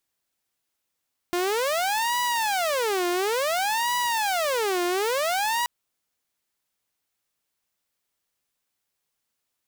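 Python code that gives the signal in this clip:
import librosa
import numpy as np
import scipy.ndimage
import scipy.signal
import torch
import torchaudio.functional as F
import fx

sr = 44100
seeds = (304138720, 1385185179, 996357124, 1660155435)

y = fx.siren(sr, length_s=4.33, kind='wail', low_hz=351.0, high_hz=977.0, per_s=0.57, wave='saw', level_db=-20.0)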